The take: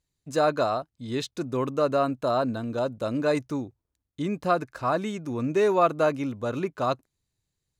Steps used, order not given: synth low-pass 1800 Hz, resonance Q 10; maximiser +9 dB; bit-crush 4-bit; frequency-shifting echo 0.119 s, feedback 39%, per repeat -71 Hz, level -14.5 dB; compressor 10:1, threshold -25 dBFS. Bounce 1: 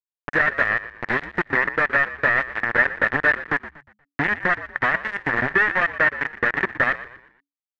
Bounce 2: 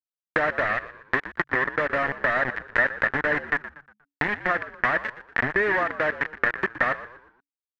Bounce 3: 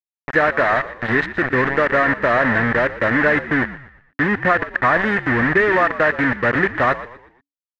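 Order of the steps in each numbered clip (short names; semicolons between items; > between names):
maximiser > compressor > bit-crush > frequency-shifting echo > synth low-pass; bit-crush > maximiser > compressor > synth low-pass > frequency-shifting echo; compressor > maximiser > bit-crush > frequency-shifting echo > synth low-pass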